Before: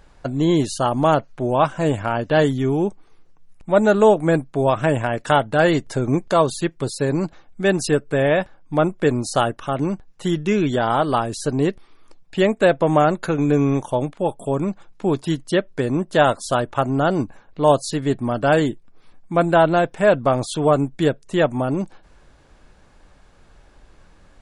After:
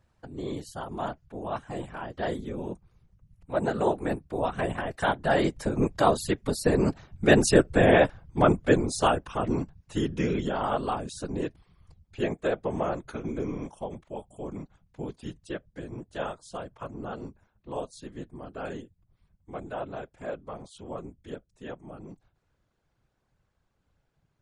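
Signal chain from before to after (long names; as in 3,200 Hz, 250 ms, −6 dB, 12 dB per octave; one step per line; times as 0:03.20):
source passing by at 0:07.66, 18 m/s, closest 19 metres
random phases in short frames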